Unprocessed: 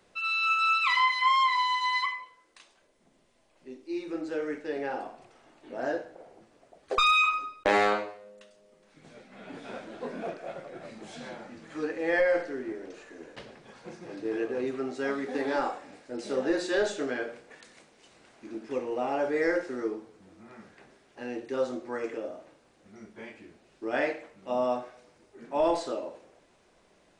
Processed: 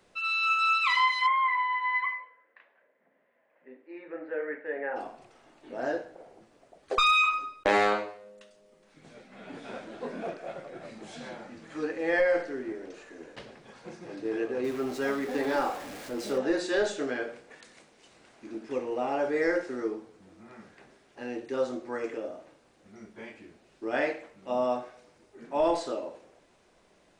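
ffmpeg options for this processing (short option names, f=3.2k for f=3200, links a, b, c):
-filter_complex "[0:a]asplit=3[a][b][c];[a]afade=t=out:st=1.26:d=0.02[d];[b]highpass=330,equalizer=f=350:t=q:w=4:g=-9,equalizer=f=520:t=q:w=4:g=4,equalizer=f=800:t=q:w=4:g=-3,equalizer=f=1.2k:t=q:w=4:g=-4,equalizer=f=1.8k:t=q:w=4:g=8,lowpass=f=2.1k:w=0.5412,lowpass=f=2.1k:w=1.3066,afade=t=in:st=1.26:d=0.02,afade=t=out:st=4.95:d=0.02[e];[c]afade=t=in:st=4.95:d=0.02[f];[d][e][f]amix=inputs=3:normalize=0,asettb=1/sr,asplit=3[g][h][i];[g]atrim=end=14.644[j];[h]atrim=start=14.64:end=16.38,asetpts=PTS-STARTPTS,afade=t=in:d=0.004:c=qsin,afade=t=out:st=1.736:d=0.004:c=qsin,aeval=exprs='val(0)+0.5*0.0112*sgn(val(0))':c=same[k];[i]atrim=start=16.376[l];[j][k]acrossfade=d=0.004:c1=hsin:c2=qsin[m];[m][l]acrossfade=d=0.004:c1=qsin:c2=hsin"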